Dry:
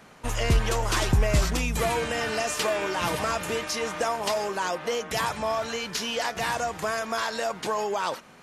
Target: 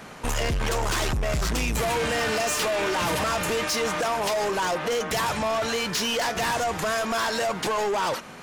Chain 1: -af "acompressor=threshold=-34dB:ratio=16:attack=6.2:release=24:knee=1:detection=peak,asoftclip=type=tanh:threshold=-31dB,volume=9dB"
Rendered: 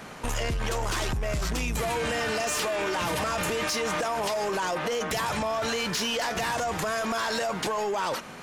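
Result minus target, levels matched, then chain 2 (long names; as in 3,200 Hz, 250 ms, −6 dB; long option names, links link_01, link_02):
downward compressor: peak gain reduction +7 dB
-af "acompressor=threshold=-26.5dB:ratio=16:attack=6.2:release=24:knee=1:detection=peak,asoftclip=type=tanh:threshold=-31dB,volume=9dB"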